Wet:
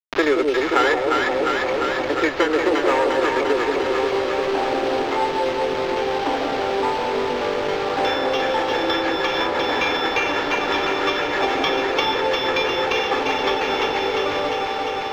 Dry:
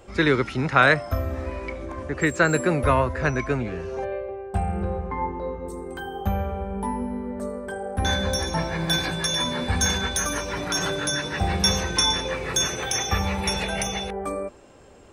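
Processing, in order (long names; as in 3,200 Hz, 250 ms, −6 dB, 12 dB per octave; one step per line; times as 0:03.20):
lower of the sound and its delayed copy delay 2.3 ms
elliptic high-pass filter 260 Hz, stop band 40 dB
bit reduction 6 bits
on a send: delay that swaps between a low-pass and a high-pass 175 ms, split 840 Hz, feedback 82%, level −3 dB
on the sum: decimation without filtering 5×
high-frequency loss of the air 220 metres
multiband upward and downward compressor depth 70%
level +6.5 dB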